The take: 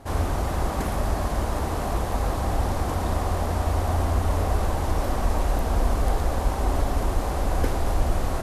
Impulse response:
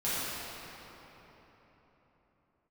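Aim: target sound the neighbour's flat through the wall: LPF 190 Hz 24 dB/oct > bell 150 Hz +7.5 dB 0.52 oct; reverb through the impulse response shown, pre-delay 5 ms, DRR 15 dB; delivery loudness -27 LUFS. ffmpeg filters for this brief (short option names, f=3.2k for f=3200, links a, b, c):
-filter_complex "[0:a]asplit=2[a][b];[1:a]atrim=start_sample=2205,adelay=5[c];[b][c]afir=irnorm=-1:irlink=0,volume=-24.5dB[d];[a][d]amix=inputs=2:normalize=0,lowpass=f=190:w=0.5412,lowpass=f=190:w=1.3066,equalizer=f=150:t=o:w=0.52:g=7.5,volume=0.5dB"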